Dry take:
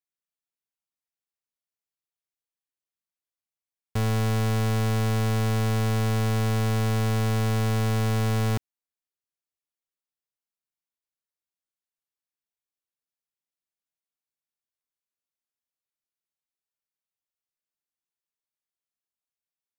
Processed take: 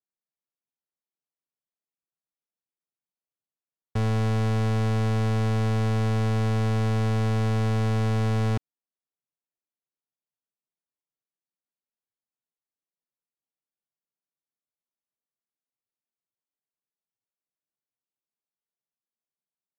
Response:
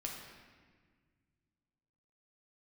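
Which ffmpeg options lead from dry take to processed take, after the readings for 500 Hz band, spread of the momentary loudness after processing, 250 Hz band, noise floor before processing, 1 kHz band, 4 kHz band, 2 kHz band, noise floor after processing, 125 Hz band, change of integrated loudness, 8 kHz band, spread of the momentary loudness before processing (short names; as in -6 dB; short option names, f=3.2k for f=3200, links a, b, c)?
0.0 dB, 2 LU, +0.5 dB, under -85 dBFS, -1.0 dB, -4.0 dB, -2.0 dB, under -85 dBFS, +0.5 dB, 0.0 dB, -7.5 dB, 2 LU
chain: -af "aemphasis=mode=reproduction:type=cd,adynamicsmooth=sensitivity=4:basefreq=1.4k" -ar 48000 -c:a libvorbis -b:a 96k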